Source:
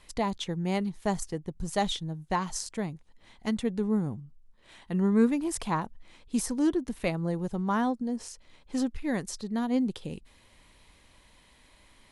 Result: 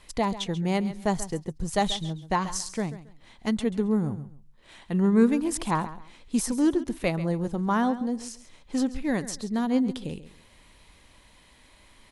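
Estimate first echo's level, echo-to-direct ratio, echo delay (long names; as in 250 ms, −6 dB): −14.5 dB, −14.5 dB, 136 ms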